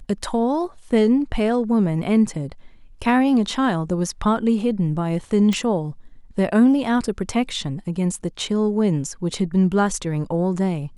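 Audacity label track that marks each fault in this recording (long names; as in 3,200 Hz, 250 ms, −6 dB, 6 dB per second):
5.530000	5.530000	click −11 dBFS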